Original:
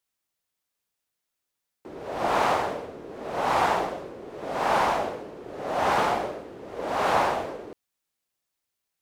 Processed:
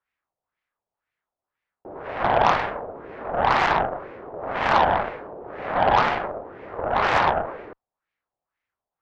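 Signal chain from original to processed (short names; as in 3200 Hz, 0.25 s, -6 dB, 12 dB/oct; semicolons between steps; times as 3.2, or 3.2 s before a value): bell 240 Hz -5 dB 1.9 oct; in parallel at -2 dB: compressor, threshold -36 dBFS, peak gain reduction 16 dB; on the sum: LFO low-pass sine 2 Hz 700–2200 Hz; added harmonics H 3 -16 dB, 6 -21 dB, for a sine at -6.5 dBFS; gain +3 dB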